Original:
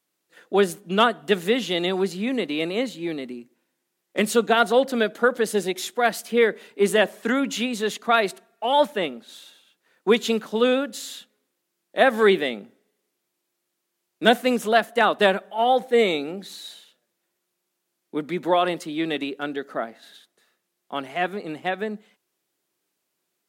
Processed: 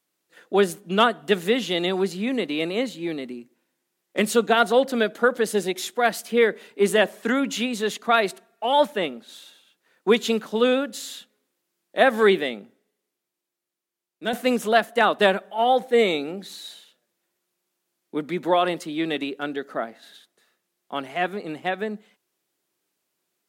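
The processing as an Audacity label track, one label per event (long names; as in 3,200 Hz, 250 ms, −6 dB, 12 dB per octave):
12.240000	14.330000	fade out quadratic, to −10 dB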